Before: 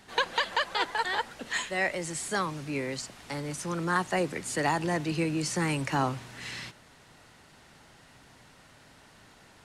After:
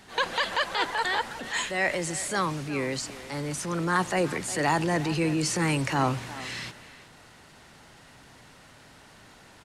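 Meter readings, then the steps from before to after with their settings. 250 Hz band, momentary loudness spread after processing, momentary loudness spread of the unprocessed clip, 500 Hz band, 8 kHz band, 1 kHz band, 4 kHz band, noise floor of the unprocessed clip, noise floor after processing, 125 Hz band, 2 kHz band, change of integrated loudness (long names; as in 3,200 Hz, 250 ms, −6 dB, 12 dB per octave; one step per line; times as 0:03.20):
+3.0 dB, 9 LU, 10 LU, +2.5 dB, +4.0 dB, +2.0 dB, +2.5 dB, −57 dBFS, −53 dBFS, +3.5 dB, +2.5 dB, +2.5 dB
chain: transient designer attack −5 dB, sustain +3 dB
far-end echo of a speakerphone 360 ms, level −14 dB
level +3.5 dB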